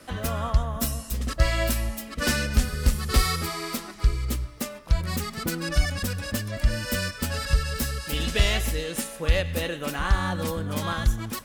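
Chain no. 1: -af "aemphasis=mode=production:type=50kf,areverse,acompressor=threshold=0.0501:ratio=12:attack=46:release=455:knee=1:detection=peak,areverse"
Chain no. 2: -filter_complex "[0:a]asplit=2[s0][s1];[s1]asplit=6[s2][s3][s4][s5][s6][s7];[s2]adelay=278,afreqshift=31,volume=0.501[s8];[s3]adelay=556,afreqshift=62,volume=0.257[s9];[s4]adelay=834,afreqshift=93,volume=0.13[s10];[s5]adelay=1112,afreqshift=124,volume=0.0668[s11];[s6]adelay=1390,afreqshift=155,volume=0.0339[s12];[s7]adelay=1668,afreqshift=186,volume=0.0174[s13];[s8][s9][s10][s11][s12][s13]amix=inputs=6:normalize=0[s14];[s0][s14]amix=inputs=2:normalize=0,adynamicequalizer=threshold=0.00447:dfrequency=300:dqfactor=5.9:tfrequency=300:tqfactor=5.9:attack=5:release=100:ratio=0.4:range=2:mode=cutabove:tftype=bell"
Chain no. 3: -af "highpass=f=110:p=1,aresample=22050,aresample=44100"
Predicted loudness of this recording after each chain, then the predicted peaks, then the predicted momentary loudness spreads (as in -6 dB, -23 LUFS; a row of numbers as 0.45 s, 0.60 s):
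-28.5 LUFS, -25.5 LUFS, -29.0 LUFS; -12.5 dBFS, -6.5 dBFS, -10.5 dBFS; 4 LU, 5 LU, 7 LU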